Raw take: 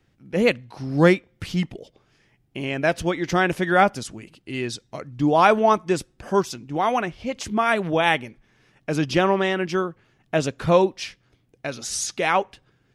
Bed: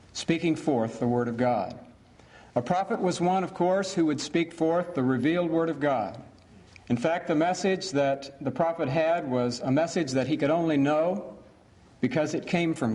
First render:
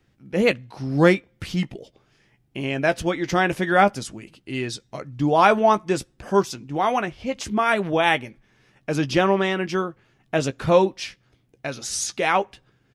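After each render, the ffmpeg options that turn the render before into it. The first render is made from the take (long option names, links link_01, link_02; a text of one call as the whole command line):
ffmpeg -i in.wav -filter_complex "[0:a]asplit=2[link_01][link_02];[link_02]adelay=15,volume=-11.5dB[link_03];[link_01][link_03]amix=inputs=2:normalize=0" out.wav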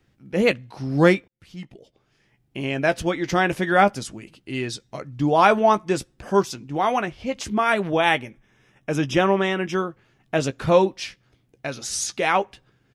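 ffmpeg -i in.wav -filter_complex "[0:a]asettb=1/sr,asplit=3[link_01][link_02][link_03];[link_01]atrim=end=8.244[link_04];[link_02]atrim=start=8.24:end=9.73,asetpts=PTS-STARTPTS,afade=type=in:duration=0.004:curve=qsin,afade=type=out:start_time=1.486:duration=0.004:curve=qsin,asuperstop=centerf=4400:order=4:qfactor=3.7[link_05];[link_03]atrim=start=9.726[link_06];[link_04][link_05]acrossfade=duration=0.004:curve1=hsin:curve2=qsin[link_07];[link_07][link_06]acrossfade=duration=0.004:curve1=qsin:curve2=hsin,asplit=2[link_08][link_09];[link_08]atrim=end=1.28,asetpts=PTS-STARTPTS,afade=type=out:start_time=1.276:duration=0.004:curve=hsin[link_10];[link_09]atrim=start=1.28,asetpts=PTS-STARTPTS,afade=type=in:duration=1.36[link_11];[link_10][link_11]concat=n=2:v=0:a=1" out.wav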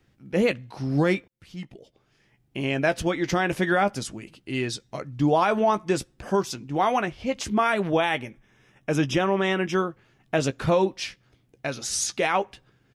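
ffmpeg -i in.wav -af "alimiter=limit=-12dB:level=0:latency=1:release=101" out.wav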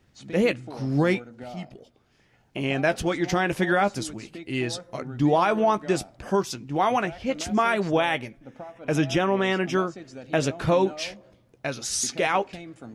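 ffmpeg -i in.wav -i bed.wav -filter_complex "[1:a]volume=-15dB[link_01];[0:a][link_01]amix=inputs=2:normalize=0" out.wav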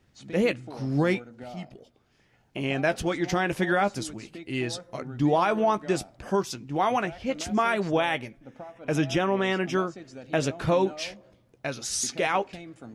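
ffmpeg -i in.wav -af "volume=-2dB" out.wav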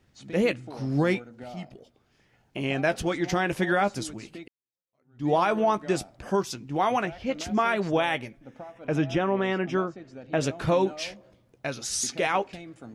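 ffmpeg -i in.wav -filter_complex "[0:a]asettb=1/sr,asplit=3[link_01][link_02][link_03];[link_01]atrim=end=7.054[link_04];[link_02]atrim=start=7.05:end=7.83,asetpts=PTS-STARTPTS,afade=type=in:duration=0.004:curve=qsin,afade=type=out:start_time=0.776:duration=0.004:curve=qsin,equalizer=frequency=8900:width=1.5:gain=-6.5[link_05];[link_03]atrim=start=7.826[link_06];[link_04][link_05]acrossfade=duration=0.004:curve1=hsin:curve2=qsin[link_07];[link_07][link_06]acrossfade=duration=0.004:curve1=qsin:curve2=hsin,asettb=1/sr,asplit=3[link_08][link_09][link_10];[link_08]atrim=end=8.874[link_11];[link_09]atrim=start=8.87:end=10.41,asetpts=PTS-STARTPTS,afade=type=in:duration=0.004:curve=qsin,afade=type=out:start_time=1.536:duration=0.004:curve=qsin,lowpass=frequency=2200:poles=1[link_12];[link_10]atrim=start=10.406[link_13];[link_11][link_12]acrossfade=duration=0.004:curve1=hsin:curve2=qsin[link_14];[link_14][link_13]acrossfade=duration=0.004:curve1=qsin:curve2=hsin,asplit=2[link_15][link_16];[link_15]atrim=end=4.48,asetpts=PTS-STARTPTS,afade=type=out:start_time=4.476:duration=0.004:curve=hsin[link_17];[link_16]atrim=start=4.48,asetpts=PTS-STARTPTS,afade=type=in:duration=0.82:curve=exp[link_18];[link_17][link_18]concat=n=2:v=0:a=1" out.wav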